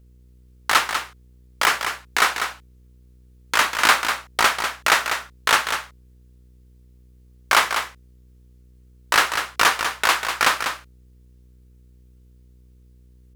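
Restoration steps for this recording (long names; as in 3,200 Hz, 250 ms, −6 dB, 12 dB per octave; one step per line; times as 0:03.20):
hum removal 61.8 Hz, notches 8
echo removal 196 ms −7.5 dB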